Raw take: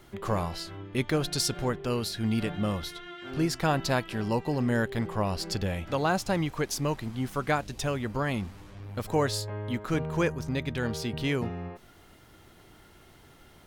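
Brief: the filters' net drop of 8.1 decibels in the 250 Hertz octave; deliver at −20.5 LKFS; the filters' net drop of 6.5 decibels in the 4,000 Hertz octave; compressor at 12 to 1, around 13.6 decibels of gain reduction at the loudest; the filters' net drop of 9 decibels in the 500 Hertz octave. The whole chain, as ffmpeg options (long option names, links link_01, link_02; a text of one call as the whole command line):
ffmpeg -i in.wav -af "equalizer=frequency=250:width_type=o:gain=-9,equalizer=frequency=500:width_type=o:gain=-8.5,equalizer=frequency=4000:width_type=o:gain=-8.5,acompressor=threshold=-40dB:ratio=12,volume=24.5dB" out.wav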